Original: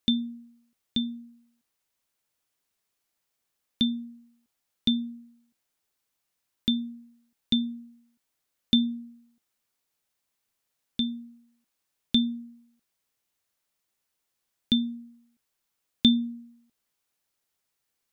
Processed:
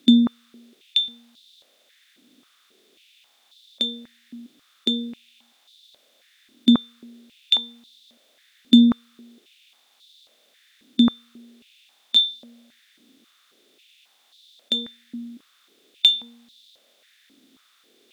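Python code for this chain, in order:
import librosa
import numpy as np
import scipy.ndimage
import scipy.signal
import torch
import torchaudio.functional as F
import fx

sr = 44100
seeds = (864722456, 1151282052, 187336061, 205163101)

y = fx.bin_compress(x, sr, power=0.6)
y = fx.cheby_harmonics(y, sr, harmonics=(8,), levels_db=(-34,), full_scale_db=-5.5)
y = fx.filter_held_highpass(y, sr, hz=3.7, low_hz=270.0, high_hz=3800.0)
y = y * librosa.db_to_amplitude(1.5)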